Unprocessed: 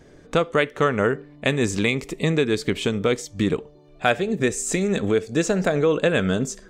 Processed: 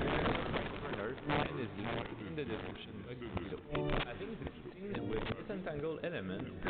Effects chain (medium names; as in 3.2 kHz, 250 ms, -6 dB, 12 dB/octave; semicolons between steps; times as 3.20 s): dynamic bell 210 Hz, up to -3 dB, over -41 dBFS, Q 6.8; in parallel at -2.5 dB: compression, threshold -29 dBFS, peak gain reduction 14.5 dB; on the sum: slow attack 132 ms; inverted gate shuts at -24 dBFS, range -33 dB; integer overflow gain 38 dB; reverberation RT60 3.4 s, pre-delay 119 ms, DRR 15 dB; ever faster or slower copies 220 ms, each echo -4 st, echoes 3, each echo -6 dB; resampled via 8 kHz; trim +11.5 dB